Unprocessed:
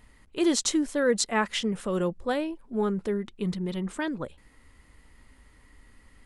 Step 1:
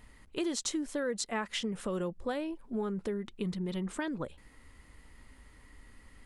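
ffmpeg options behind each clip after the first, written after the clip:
ffmpeg -i in.wav -af "acompressor=threshold=-32dB:ratio=4" out.wav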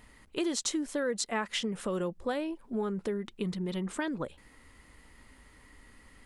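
ffmpeg -i in.wav -af "lowshelf=frequency=110:gain=-6.5,volume=2.5dB" out.wav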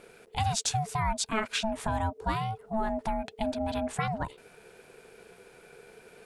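ffmpeg -i in.wav -af "aeval=exprs='val(0)*sin(2*PI*440*n/s)':channel_layout=same,volume=5.5dB" out.wav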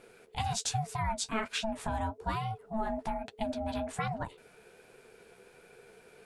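ffmpeg -i in.wav -af "flanger=delay=7.3:depth=8.7:regen=-31:speed=1.2:shape=triangular" out.wav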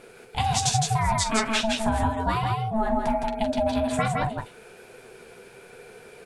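ffmpeg -i in.wav -af "aecho=1:1:45|162|170:0.237|0.596|0.335,volume=8dB" out.wav

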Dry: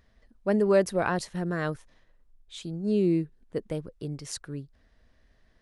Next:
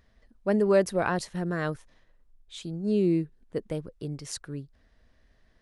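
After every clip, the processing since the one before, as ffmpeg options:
ffmpeg -i in.wav -af anull out.wav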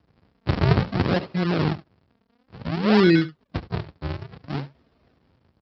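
ffmpeg -i in.wav -af "aresample=11025,acrusher=samples=27:mix=1:aa=0.000001:lfo=1:lforange=43.2:lforate=0.56,aresample=44100,aecho=1:1:71:0.158,volume=7dB" -ar 32000 -c:a libspeex -b:a 24k out.spx

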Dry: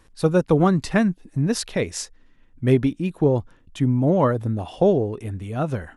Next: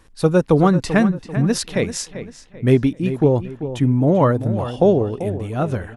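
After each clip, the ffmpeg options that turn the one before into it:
ffmpeg -i in.wav -filter_complex "[0:a]asplit=2[link_01][link_02];[link_02]adelay=390,lowpass=frequency=3500:poles=1,volume=-11.5dB,asplit=2[link_03][link_04];[link_04]adelay=390,lowpass=frequency=3500:poles=1,volume=0.37,asplit=2[link_05][link_06];[link_06]adelay=390,lowpass=frequency=3500:poles=1,volume=0.37,asplit=2[link_07][link_08];[link_08]adelay=390,lowpass=frequency=3500:poles=1,volume=0.37[link_09];[link_01][link_03][link_05][link_07][link_09]amix=inputs=5:normalize=0,volume=3dB" out.wav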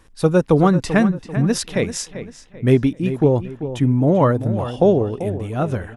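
ffmpeg -i in.wav -af "bandreject=frequency=4300:width=18" out.wav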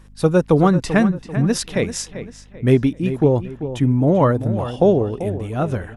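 ffmpeg -i in.wav -af "aeval=exprs='val(0)+0.00562*(sin(2*PI*50*n/s)+sin(2*PI*2*50*n/s)/2+sin(2*PI*3*50*n/s)/3+sin(2*PI*4*50*n/s)/4+sin(2*PI*5*50*n/s)/5)':channel_layout=same" out.wav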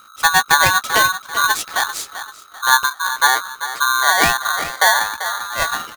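ffmpeg -i in.wav -filter_complex "[0:a]asplit=2[link_01][link_02];[link_02]adelay=13,volume=-10.5dB[link_03];[link_01][link_03]amix=inputs=2:normalize=0,aeval=exprs='val(0)*sgn(sin(2*PI*1300*n/s))':channel_layout=same" out.wav

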